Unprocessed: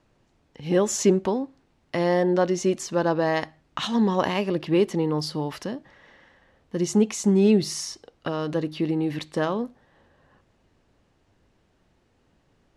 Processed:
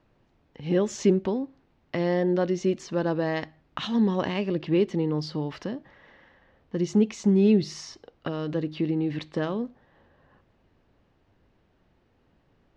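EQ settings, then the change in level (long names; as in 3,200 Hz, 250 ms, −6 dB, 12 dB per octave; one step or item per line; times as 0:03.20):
high-shelf EQ 8,600 Hz +7 dB
dynamic equaliser 930 Hz, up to −7 dB, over −36 dBFS, Q 0.82
high-frequency loss of the air 180 metres
0.0 dB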